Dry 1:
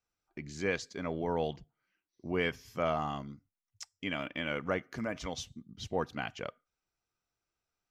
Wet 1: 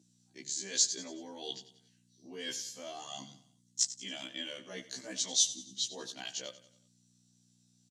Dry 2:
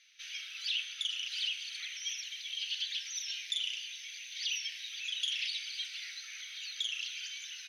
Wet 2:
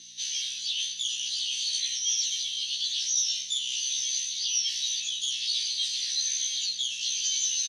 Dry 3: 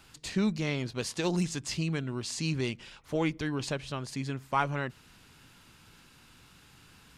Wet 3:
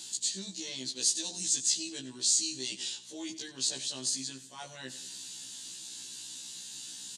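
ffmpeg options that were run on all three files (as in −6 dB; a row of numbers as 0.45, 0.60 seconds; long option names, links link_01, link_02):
-af "highshelf=frequency=4200:gain=4.5,areverse,acompressor=threshold=-39dB:ratio=10,areverse,aexciter=amount=15.2:drive=3.2:freq=3400,aeval=exprs='val(0)+0.002*(sin(2*PI*60*n/s)+sin(2*PI*2*60*n/s)/2+sin(2*PI*3*60*n/s)/3+sin(2*PI*4*60*n/s)/4+sin(2*PI*5*60*n/s)/5)':channel_layout=same,highpass=frequency=180:width=0.5412,highpass=frequency=180:width=1.3066,equalizer=frequency=310:width_type=q:width=4:gain=5,equalizer=frequency=1300:width_type=q:width=4:gain=-10,equalizer=frequency=1800:width_type=q:width=4:gain=6,equalizer=frequency=5200:width_type=q:width=4:gain=-7,lowpass=frequency=8000:width=0.5412,lowpass=frequency=8000:width=1.3066,aecho=1:1:92|184|276|368:0.168|0.0772|0.0355|0.0163,afftfilt=real='re*1.73*eq(mod(b,3),0)':imag='im*1.73*eq(mod(b,3),0)':win_size=2048:overlap=0.75"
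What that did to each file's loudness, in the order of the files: +1.5, +9.0, 0.0 LU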